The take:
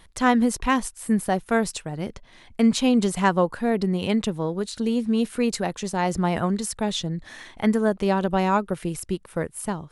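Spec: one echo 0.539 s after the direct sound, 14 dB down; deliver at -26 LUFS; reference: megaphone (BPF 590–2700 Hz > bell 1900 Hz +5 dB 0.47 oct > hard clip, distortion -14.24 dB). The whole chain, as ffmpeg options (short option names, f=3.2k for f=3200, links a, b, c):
-af "highpass=590,lowpass=2.7k,equalizer=f=1.9k:t=o:w=0.47:g=5,aecho=1:1:539:0.2,asoftclip=type=hard:threshold=-15dB,volume=4dB"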